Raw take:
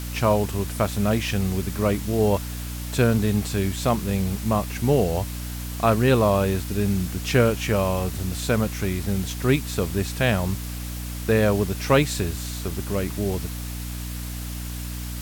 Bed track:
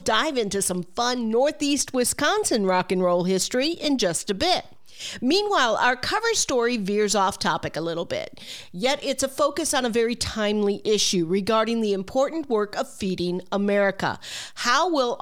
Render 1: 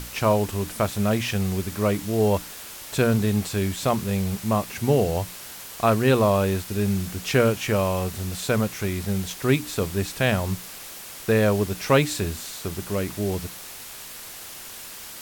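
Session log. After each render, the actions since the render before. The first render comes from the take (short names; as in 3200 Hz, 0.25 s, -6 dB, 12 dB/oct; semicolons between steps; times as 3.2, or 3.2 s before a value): notches 60/120/180/240/300 Hz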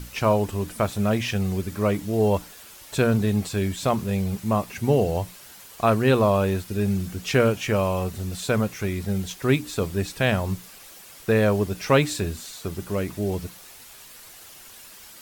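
denoiser 8 dB, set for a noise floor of -40 dBFS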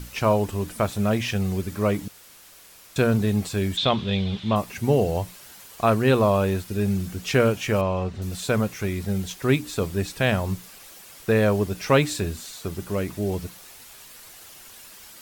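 2.08–2.96 room tone; 3.77–4.56 synth low-pass 3500 Hz, resonance Q 7.8; 7.81–8.22 air absorption 140 m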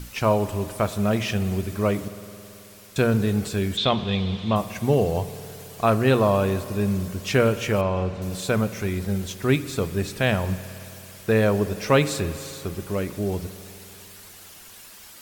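spring tank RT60 3 s, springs 54 ms, chirp 40 ms, DRR 13.5 dB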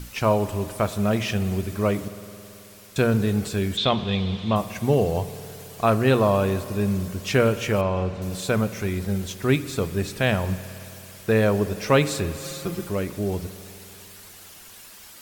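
12.43–12.89 comb 5.8 ms, depth 86%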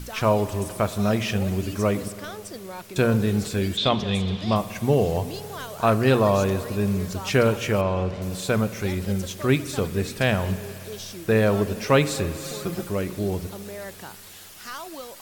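add bed track -16.5 dB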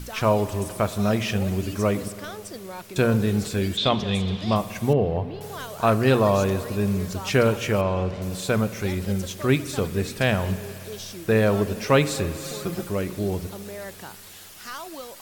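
4.93–5.41 air absorption 390 m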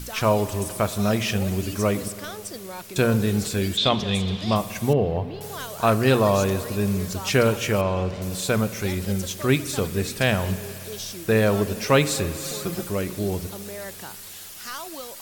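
high shelf 3800 Hz +6 dB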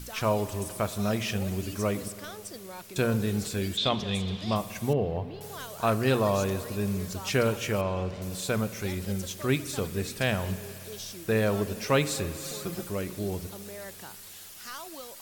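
gain -6 dB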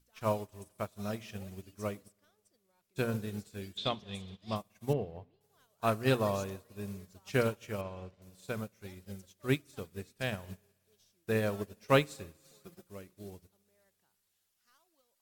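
upward expander 2.5:1, over -42 dBFS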